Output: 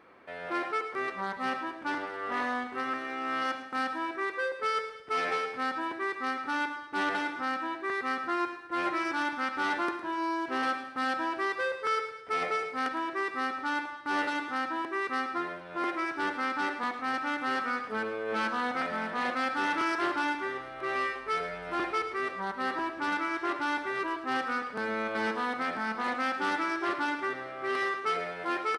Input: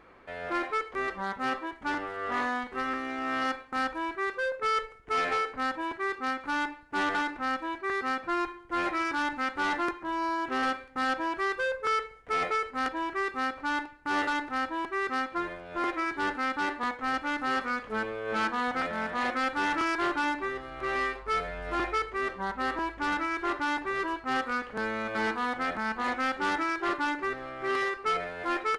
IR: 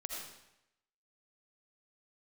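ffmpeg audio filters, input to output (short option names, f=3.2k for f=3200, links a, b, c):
-filter_complex "[0:a]highpass=150,bandreject=f=6.9k:w=8.7,aecho=1:1:109|218|327|436|545:0.2|0.0958|0.046|0.0221|0.0106,asplit=2[a][b];[1:a]atrim=start_sample=2205,lowshelf=f=110:g=11[c];[b][c]afir=irnorm=-1:irlink=0,volume=-6dB[d];[a][d]amix=inputs=2:normalize=0,volume=-4dB"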